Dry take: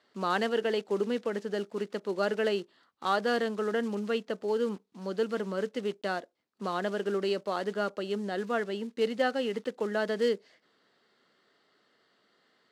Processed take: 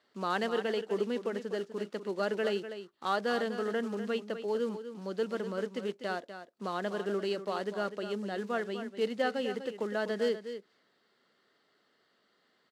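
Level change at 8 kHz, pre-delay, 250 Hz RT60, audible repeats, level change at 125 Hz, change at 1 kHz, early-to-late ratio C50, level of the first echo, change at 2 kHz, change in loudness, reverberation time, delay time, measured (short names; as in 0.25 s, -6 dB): n/a, none, none, 1, -2.5 dB, -2.5 dB, none, -10.5 dB, -2.5 dB, -2.5 dB, none, 0.248 s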